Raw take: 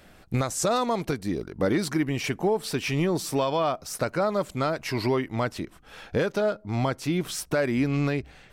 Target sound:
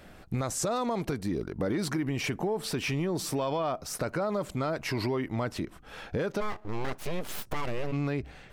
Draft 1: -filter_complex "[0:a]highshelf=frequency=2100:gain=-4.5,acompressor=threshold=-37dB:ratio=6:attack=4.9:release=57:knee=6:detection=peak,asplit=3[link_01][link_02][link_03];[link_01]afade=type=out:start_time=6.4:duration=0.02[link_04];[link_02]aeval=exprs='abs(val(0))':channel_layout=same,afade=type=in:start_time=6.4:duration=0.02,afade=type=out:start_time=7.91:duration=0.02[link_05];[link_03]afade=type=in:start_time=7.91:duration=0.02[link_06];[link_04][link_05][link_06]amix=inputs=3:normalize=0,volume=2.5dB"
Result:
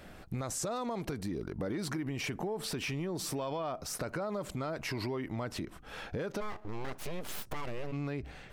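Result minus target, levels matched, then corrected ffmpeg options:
downward compressor: peak gain reduction +6 dB
-filter_complex "[0:a]highshelf=frequency=2100:gain=-4.5,acompressor=threshold=-29.5dB:ratio=6:attack=4.9:release=57:knee=6:detection=peak,asplit=3[link_01][link_02][link_03];[link_01]afade=type=out:start_time=6.4:duration=0.02[link_04];[link_02]aeval=exprs='abs(val(0))':channel_layout=same,afade=type=in:start_time=6.4:duration=0.02,afade=type=out:start_time=7.91:duration=0.02[link_05];[link_03]afade=type=in:start_time=7.91:duration=0.02[link_06];[link_04][link_05][link_06]amix=inputs=3:normalize=0,volume=2.5dB"

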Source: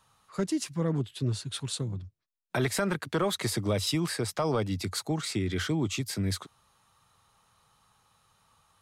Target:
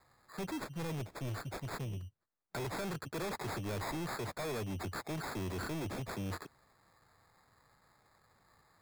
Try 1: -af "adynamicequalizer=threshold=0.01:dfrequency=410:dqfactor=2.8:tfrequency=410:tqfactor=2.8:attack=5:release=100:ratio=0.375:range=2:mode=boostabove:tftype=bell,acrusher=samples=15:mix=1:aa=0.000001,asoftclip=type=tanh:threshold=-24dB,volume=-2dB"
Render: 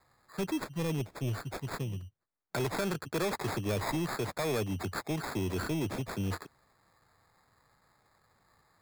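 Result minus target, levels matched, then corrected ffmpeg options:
soft clipping: distortion −8 dB
-af "adynamicequalizer=threshold=0.01:dfrequency=410:dqfactor=2.8:tfrequency=410:tqfactor=2.8:attack=5:release=100:ratio=0.375:range=2:mode=boostabove:tftype=bell,acrusher=samples=15:mix=1:aa=0.000001,asoftclip=type=tanh:threshold=-34dB,volume=-2dB"

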